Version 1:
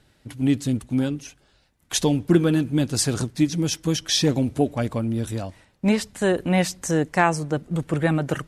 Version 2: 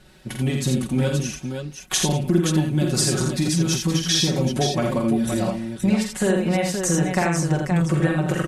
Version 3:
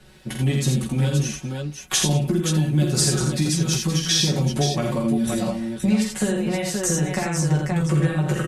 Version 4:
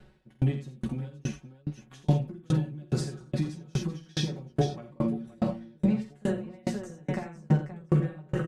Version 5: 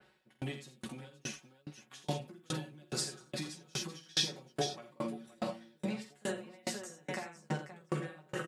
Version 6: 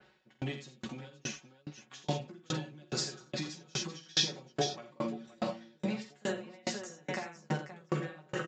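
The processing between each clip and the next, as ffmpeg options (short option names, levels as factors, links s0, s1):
-filter_complex "[0:a]aecho=1:1:5.4:0.89,acompressor=threshold=0.0562:ratio=5,asplit=2[s0][s1];[s1]aecho=0:1:47|83|192|523:0.531|0.596|0.106|0.501[s2];[s0][s2]amix=inputs=2:normalize=0,volume=1.78"
-filter_complex "[0:a]acrossover=split=210|3000[s0][s1][s2];[s1]acompressor=threshold=0.0562:ratio=6[s3];[s0][s3][s2]amix=inputs=3:normalize=0,asplit=2[s4][s5];[s5]adelay=14,volume=0.562[s6];[s4][s6]amix=inputs=2:normalize=0"
-filter_complex "[0:a]lowpass=f=1300:p=1,asplit=2[s0][s1];[s1]adelay=1516,volume=0.398,highshelf=f=4000:g=-34.1[s2];[s0][s2]amix=inputs=2:normalize=0,aeval=exprs='val(0)*pow(10,-34*if(lt(mod(2.4*n/s,1),2*abs(2.4)/1000),1-mod(2.4*n/s,1)/(2*abs(2.4)/1000),(mod(2.4*n/s,1)-2*abs(2.4)/1000)/(1-2*abs(2.4)/1000))/20)':c=same"
-af "highpass=f=1000:p=1,bandreject=f=6100:w=25,adynamicequalizer=threshold=0.00126:dfrequency=3200:dqfactor=0.7:tfrequency=3200:tqfactor=0.7:attack=5:release=100:ratio=0.375:range=3:mode=boostabove:tftype=highshelf,volume=1.12"
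-af "aresample=16000,aresample=44100,volume=1.33"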